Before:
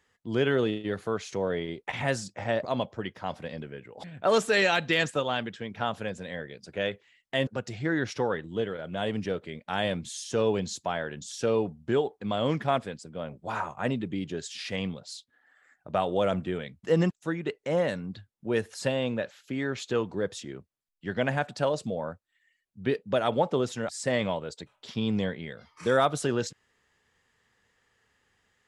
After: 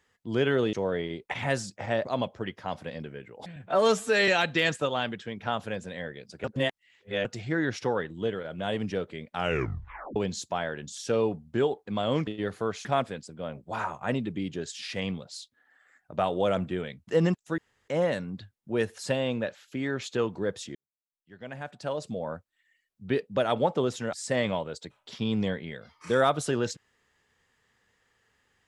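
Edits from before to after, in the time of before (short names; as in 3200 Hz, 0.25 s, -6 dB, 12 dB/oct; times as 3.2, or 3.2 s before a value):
0.73–1.31 move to 12.61
4.14–4.62 stretch 1.5×
6.78–7.59 reverse
9.69 tape stop 0.81 s
17.34–17.64 room tone
20.51–22.09 fade in quadratic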